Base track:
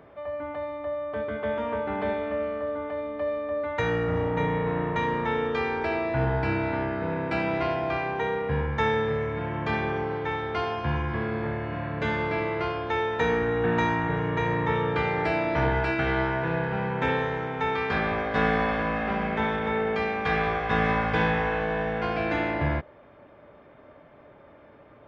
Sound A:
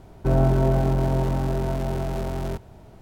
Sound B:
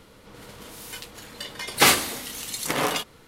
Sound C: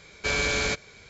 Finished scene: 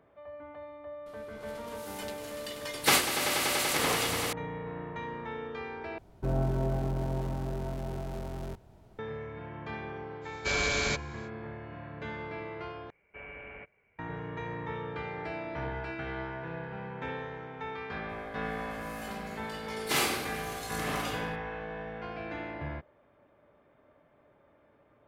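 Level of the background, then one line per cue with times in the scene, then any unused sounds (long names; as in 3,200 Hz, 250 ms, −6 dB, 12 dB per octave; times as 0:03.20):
base track −12 dB
0:01.06: mix in B −7 dB + echo that builds up and dies away 96 ms, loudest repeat 5, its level −9 dB
0:05.98: overwrite with A −10 dB
0:10.21: mix in C −3.5 dB, fades 0.05 s
0:12.90: overwrite with C −15.5 dB + Chebyshev low-pass with heavy ripple 2,900 Hz, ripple 6 dB
0:18.09: mix in B −16.5 dB + rectangular room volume 830 cubic metres, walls mixed, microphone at 3.1 metres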